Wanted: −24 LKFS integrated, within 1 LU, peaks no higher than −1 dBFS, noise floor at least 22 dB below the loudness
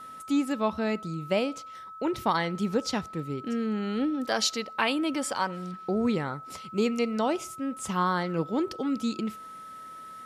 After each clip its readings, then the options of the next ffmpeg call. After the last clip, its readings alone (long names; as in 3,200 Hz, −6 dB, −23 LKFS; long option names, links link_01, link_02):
interfering tone 1,300 Hz; level of the tone −41 dBFS; integrated loudness −29.0 LKFS; sample peak −11.0 dBFS; target loudness −24.0 LKFS
→ -af "bandreject=frequency=1300:width=30"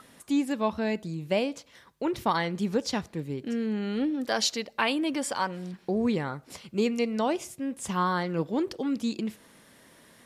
interfering tone none found; integrated loudness −29.5 LKFS; sample peak −11.5 dBFS; target loudness −24.0 LKFS
→ -af "volume=5.5dB"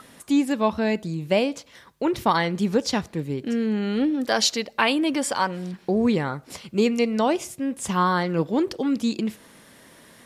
integrated loudness −24.0 LKFS; sample peak −6.0 dBFS; background noise floor −53 dBFS